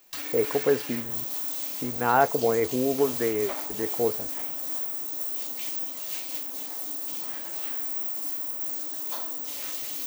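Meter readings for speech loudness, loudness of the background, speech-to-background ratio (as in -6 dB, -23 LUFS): -26.5 LUFS, -29.5 LUFS, 3.0 dB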